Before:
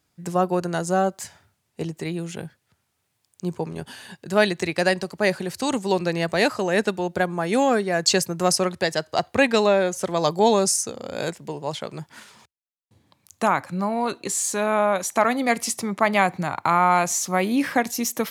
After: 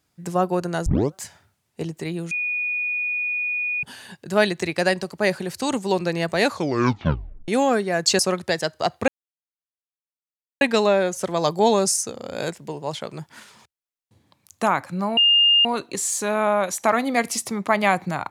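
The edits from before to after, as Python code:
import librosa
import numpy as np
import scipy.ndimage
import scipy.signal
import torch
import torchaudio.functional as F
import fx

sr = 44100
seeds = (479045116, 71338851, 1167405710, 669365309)

y = fx.edit(x, sr, fx.tape_start(start_s=0.86, length_s=0.28),
    fx.bleep(start_s=2.31, length_s=1.52, hz=2460.0, db=-22.0),
    fx.tape_stop(start_s=6.44, length_s=1.04),
    fx.cut(start_s=8.19, length_s=0.33),
    fx.insert_silence(at_s=9.41, length_s=1.53),
    fx.insert_tone(at_s=13.97, length_s=0.48, hz=2820.0, db=-12.5), tone=tone)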